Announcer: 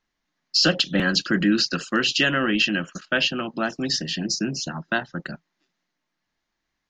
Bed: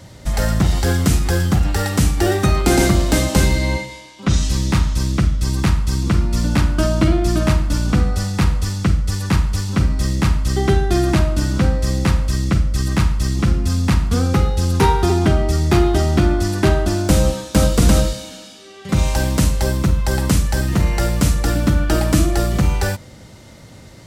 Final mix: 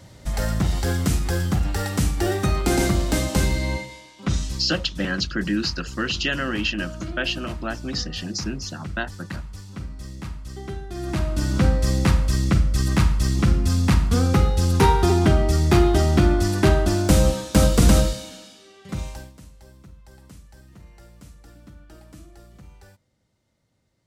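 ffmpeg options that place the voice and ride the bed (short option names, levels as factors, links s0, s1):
-filter_complex "[0:a]adelay=4050,volume=0.631[s0];[1:a]volume=2.99,afade=t=out:st=4.25:d=0.48:silence=0.266073,afade=t=in:st=10.94:d=0.72:silence=0.16788,afade=t=out:st=17.92:d=1.41:silence=0.0398107[s1];[s0][s1]amix=inputs=2:normalize=0"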